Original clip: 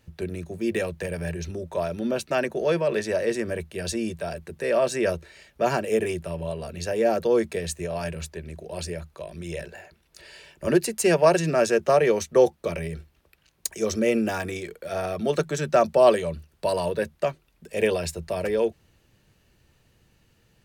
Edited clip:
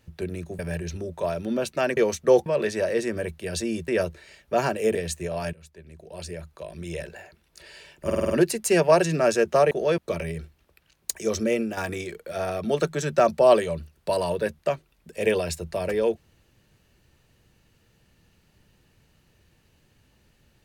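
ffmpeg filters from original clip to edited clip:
ffmpeg -i in.wav -filter_complex "[0:a]asplit=15[link_01][link_02][link_03][link_04][link_05][link_06][link_07][link_08][link_09][link_10][link_11][link_12][link_13][link_14][link_15];[link_01]atrim=end=0.592[link_16];[link_02]atrim=start=1.128:end=2.512[link_17];[link_03]atrim=start=12.048:end=12.542[link_18];[link_04]atrim=start=2.778:end=4.202[link_19];[link_05]atrim=start=4.958:end=6.032[link_20];[link_06]atrim=start=7.538:end=8.12,asetpts=PTS-STARTPTS,afade=type=out:start_time=0.578:duration=0.004:curve=hsin:silence=0.1[link_21];[link_07]atrim=start=8.12:end=10.692,asetpts=PTS-STARTPTS,afade=type=in:duration=1.25:silence=0.1[link_22];[link_08]atrim=start=10.638:end=10.692[link_23];[link_09]atrim=start=10.638:end=10.692[link_24];[link_10]atrim=start=10.638:end=10.692[link_25];[link_11]atrim=start=10.638:end=10.692[link_26];[link_12]atrim=start=10.638:end=12.052[link_27];[link_13]atrim=start=2.508:end=2.782[link_28];[link_14]atrim=start=12.538:end=14.33,asetpts=PTS-STARTPTS,afade=type=out:start_time=1.282:duration=0.51:curve=qsin:silence=0.375837[link_29];[link_15]atrim=start=14.33,asetpts=PTS-STARTPTS,afade=type=in:duration=0.004:curve=hsin:silence=0.375837[link_30];[link_16][link_17]acrossfade=duration=0.004:curve1=hsin:curve2=hsin[link_31];[link_31][link_18]acrossfade=duration=0.004:curve1=hsin:curve2=hsin[link_32];[link_32][link_19]acrossfade=duration=0.004:curve1=hsin:curve2=hsin[link_33];[link_33][link_20]acrossfade=duration=0.004:curve1=hsin:curve2=hsin[link_34];[link_21][link_22]concat=n=2:v=0:a=1[link_35];[link_34][link_35]acrossfade=duration=0.004:curve1=hsin:curve2=hsin[link_36];[link_36][link_23]acrossfade=duration=0.004:curve1=hsin:curve2=hsin[link_37];[link_37][link_24]acrossfade=duration=0.004:curve1=hsin:curve2=hsin[link_38];[link_38][link_25]acrossfade=duration=0.004:curve1=hsin:curve2=hsin[link_39];[link_39][link_26]acrossfade=duration=0.004:curve1=hsin:curve2=hsin[link_40];[link_40][link_27]acrossfade=duration=0.004:curve1=hsin:curve2=hsin[link_41];[link_41][link_28]acrossfade=duration=0.004:curve1=hsin:curve2=hsin[link_42];[link_29][link_30]concat=n=2:v=0:a=1[link_43];[link_42][link_43]acrossfade=duration=0.004:curve1=hsin:curve2=hsin" out.wav

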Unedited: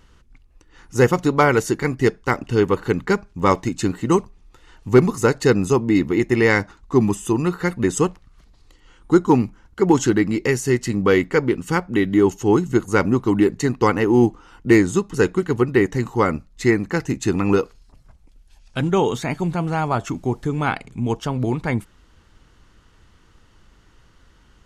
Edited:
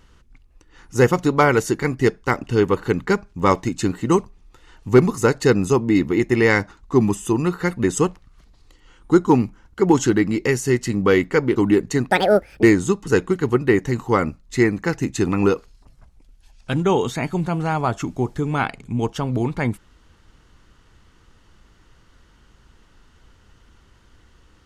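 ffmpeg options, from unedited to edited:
ffmpeg -i in.wav -filter_complex "[0:a]asplit=4[link_01][link_02][link_03][link_04];[link_01]atrim=end=11.562[link_05];[link_02]atrim=start=13.248:end=13.794[link_06];[link_03]atrim=start=13.79:end=14.7,asetpts=PTS-STARTPTS,asetrate=75852,aresample=44100[link_07];[link_04]atrim=start=14.696[link_08];[link_05][link_06]acrossfade=duration=0.004:curve1=hsin:curve2=hsin[link_09];[link_09][link_07]acrossfade=duration=0.004:curve1=hsin:curve2=hsin[link_10];[link_10][link_08]acrossfade=duration=0.004:curve1=hsin:curve2=hsin" out.wav

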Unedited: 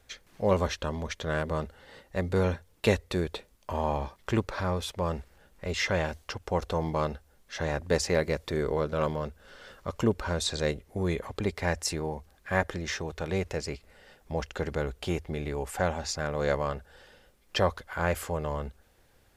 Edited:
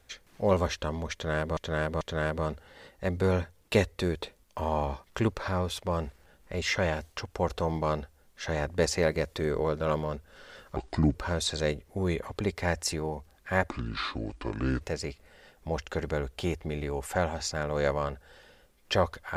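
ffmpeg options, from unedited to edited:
ffmpeg -i in.wav -filter_complex "[0:a]asplit=7[link_01][link_02][link_03][link_04][link_05][link_06][link_07];[link_01]atrim=end=1.572[link_08];[link_02]atrim=start=1.128:end=1.572[link_09];[link_03]atrim=start=1.128:end=9.884[link_10];[link_04]atrim=start=9.88:end=10.14,asetpts=PTS-STARTPTS,asetrate=29988,aresample=44100[link_11];[link_05]atrim=start=10.136:end=12.694[link_12];[link_06]atrim=start=12.69:end=13.45,asetpts=PTS-STARTPTS,asetrate=29988,aresample=44100,atrim=end_sample=49288,asetpts=PTS-STARTPTS[link_13];[link_07]atrim=start=13.446[link_14];[link_08][link_09]acrossfade=duration=0.004:curve1=hsin:curve2=hsin[link_15];[link_15][link_10]acrossfade=duration=0.004:curve1=hsin:curve2=hsin[link_16];[link_16][link_11]acrossfade=duration=0.004:curve1=hsin:curve2=hsin[link_17];[link_17][link_12]acrossfade=duration=0.004:curve1=hsin:curve2=hsin[link_18];[link_18][link_13]acrossfade=duration=0.004:curve1=hsin:curve2=hsin[link_19];[link_19][link_14]acrossfade=duration=0.004:curve1=hsin:curve2=hsin" out.wav

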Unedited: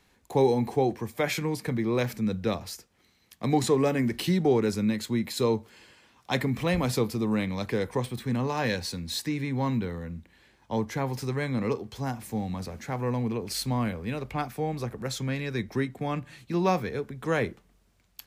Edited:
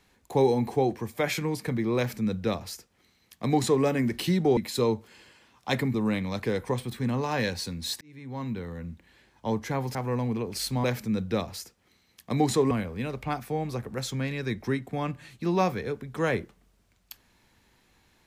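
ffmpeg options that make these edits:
ffmpeg -i in.wav -filter_complex "[0:a]asplit=7[link_01][link_02][link_03][link_04][link_05][link_06][link_07];[link_01]atrim=end=4.572[link_08];[link_02]atrim=start=5.188:end=6.562[link_09];[link_03]atrim=start=7.198:end=9.27,asetpts=PTS-STARTPTS,afade=type=out:start_time=2.068:duration=0.004:curve=hsin[link_10];[link_04]atrim=start=9.27:end=11.212,asetpts=PTS-STARTPTS,afade=type=in:duration=0.87[link_11];[link_05]atrim=start=12.898:end=13.792[link_12];[link_06]atrim=start=1.968:end=3.842[link_13];[link_07]atrim=start=13.788[link_14];[link_08][link_09]acrossfade=duration=0.004:curve1=hsin:curve2=hsin[link_15];[link_10][link_11]concat=n=2:v=0:a=1[link_16];[link_15][link_16]acrossfade=duration=0.004:curve1=hsin:curve2=hsin[link_17];[link_17][link_12]acrossfade=duration=0.004:curve1=hsin:curve2=hsin[link_18];[link_18][link_13]acrossfade=duration=0.004:curve1=hsin:curve2=hsin[link_19];[link_19][link_14]acrossfade=duration=0.004:curve1=hsin:curve2=hsin" out.wav

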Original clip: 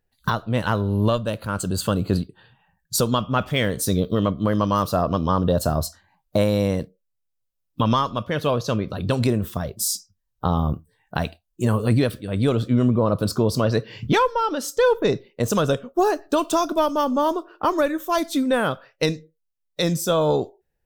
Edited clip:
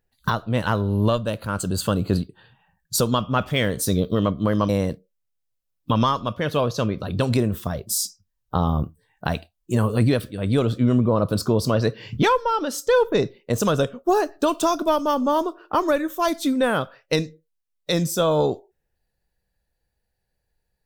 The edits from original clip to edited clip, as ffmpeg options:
ffmpeg -i in.wav -filter_complex "[0:a]asplit=2[link_01][link_02];[link_01]atrim=end=4.692[link_03];[link_02]atrim=start=6.588[link_04];[link_03][link_04]acrossfade=duration=0.004:curve1=hsin:curve2=hsin" out.wav

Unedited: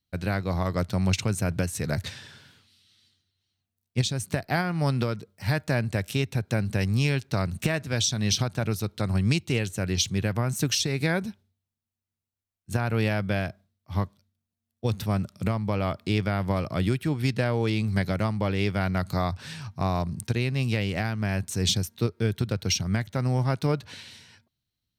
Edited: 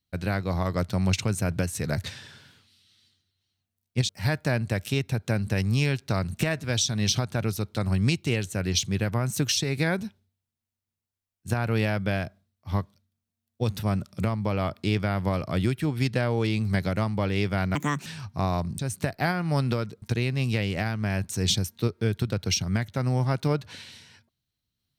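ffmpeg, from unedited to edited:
ffmpeg -i in.wav -filter_complex "[0:a]asplit=6[link_01][link_02][link_03][link_04][link_05][link_06];[link_01]atrim=end=4.092[link_07];[link_02]atrim=start=5.318:end=18.984[link_08];[link_03]atrim=start=18.98:end=19.48,asetpts=PTS-STARTPTS,asetrate=71001,aresample=44100[link_09];[link_04]atrim=start=19.476:end=20.212[link_10];[link_05]atrim=start=4.088:end=5.322[link_11];[link_06]atrim=start=20.208[link_12];[link_07][link_08]acrossfade=duration=0.004:curve1=hsin:curve2=hsin[link_13];[link_13][link_09]acrossfade=duration=0.004:curve1=hsin:curve2=hsin[link_14];[link_14][link_10]acrossfade=duration=0.004:curve1=hsin:curve2=hsin[link_15];[link_15][link_11]acrossfade=duration=0.004:curve1=hsin:curve2=hsin[link_16];[link_16][link_12]acrossfade=duration=0.004:curve1=hsin:curve2=hsin" out.wav

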